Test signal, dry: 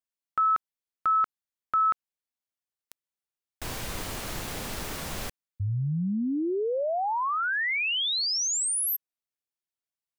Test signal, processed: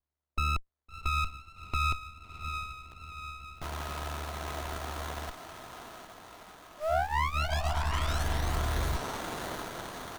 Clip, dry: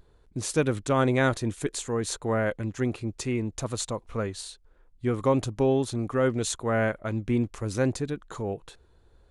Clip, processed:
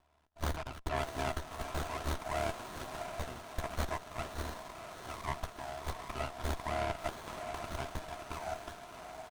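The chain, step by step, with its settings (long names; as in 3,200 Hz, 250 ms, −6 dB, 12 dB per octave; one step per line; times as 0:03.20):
comb filter 3 ms, depth 74%
brickwall limiter −21 dBFS
ring modulation 37 Hz
linear-phase brick-wall high-pass 610 Hz
feedback delay with all-pass diffusion 689 ms, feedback 61%, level −7 dB
windowed peak hold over 17 samples
level +2.5 dB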